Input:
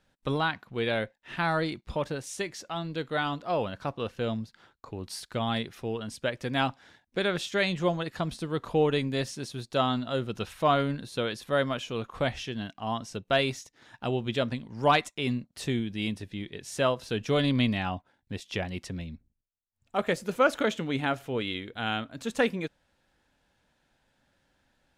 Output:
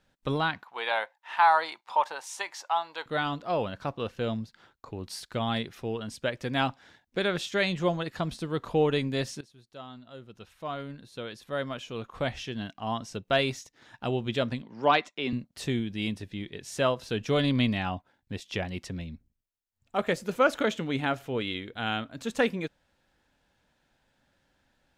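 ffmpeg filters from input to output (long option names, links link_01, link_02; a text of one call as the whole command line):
ffmpeg -i in.wav -filter_complex "[0:a]asettb=1/sr,asplit=3[link_01][link_02][link_03];[link_01]atrim=end=0.634[link_04];[link_02]atrim=start=0.63:end=3.06,asetpts=PTS-STARTPTS,afade=type=in:duration=0.004:curve=qsin,afade=type=out:start_time=2.426:duration=0.004:curve=qsin,highpass=frequency=890:width_type=q:width=5.4[link_05];[link_03]atrim=start=3.056[link_06];[link_04][link_05]acrossfade=duration=0.004:curve1=hsin:curve2=qsin[link_07];[link_07][link_06]acrossfade=duration=0.004:curve1=qsin:curve2=hsin,asettb=1/sr,asplit=3[link_08][link_09][link_10];[link_08]atrim=end=14.624[link_11];[link_09]atrim=start=14.62:end=15.33,asetpts=PTS-STARTPTS,afade=type=in:duration=0.004:curve=qsin,afade=type=out:start_time=0.706:duration=0.004:curve=qsin,acrossover=split=180 5600:gain=0.126 1 0.0708[link_12][link_13][link_14];[link_12][link_13][link_14]amix=inputs=3:normalize=0[link_15];[link_10]atrim=start=15.326[link_16];[link_11][link_15]acrossfade=duration=0.004:curve1=hsin:curve2=qsin[link_17];[link_17][link_16]acrossfade=duration=0.004:curve1=qsin:curve2=hsin,asplit=2[link_18][link_19];[link_18]atrim=end=9.41,asetpts=PTS-STARTPTS,afade=type=out:start_time=9.406:duration=0.004:curve=hsin:silence=0.112202[link_20];[link_19]atrim=start=9.41,asetpts=PTS-STARTPTS,afade=type=in:duration=3.23:curve=qua:silence=0.112202[link_21];[link_20][link_21]concat=n=2:v=0:a=1,equalizer=frequency=9800:width=2.7:gain=-3" out.wav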